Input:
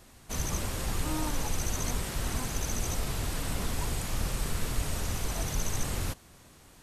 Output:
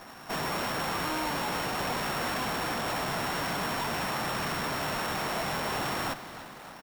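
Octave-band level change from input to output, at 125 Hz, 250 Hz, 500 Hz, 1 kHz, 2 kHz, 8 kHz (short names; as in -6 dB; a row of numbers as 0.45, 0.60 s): -6.0, +2.0, +6.0, +10.0, +8.5, -5.5 dB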